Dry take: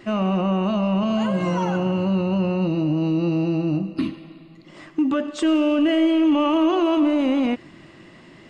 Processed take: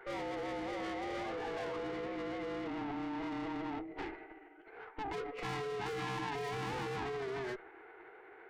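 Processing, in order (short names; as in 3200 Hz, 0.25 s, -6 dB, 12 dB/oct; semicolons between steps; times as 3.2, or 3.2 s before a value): mistuned SSB +130 Hz 340–3300 Hz; tube stage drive 34 dB, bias 0.45; formant shift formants -6 st; gain -3.5 dB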